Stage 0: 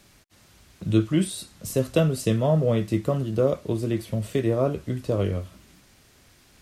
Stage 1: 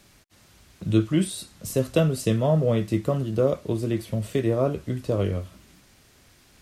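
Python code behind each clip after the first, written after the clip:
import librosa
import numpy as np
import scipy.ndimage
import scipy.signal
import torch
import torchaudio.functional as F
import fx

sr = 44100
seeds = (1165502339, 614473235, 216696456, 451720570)

y = x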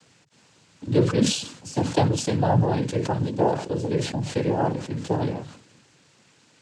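y = fx.noise_vocoder(x, sr, seeds[0], bands=8)
y = fx.sustainer(y, sr, db_per_s=88.0)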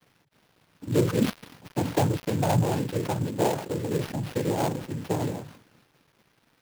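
y = fx.dead_time(x, sr, dead_ms=0.15)
y = fx.sample_hold(y, sr, seeds[1], rate_hz=7700.0, jitter_pct=20)
y = F.gain(torch.from_numpy(y), -3.0).numpy()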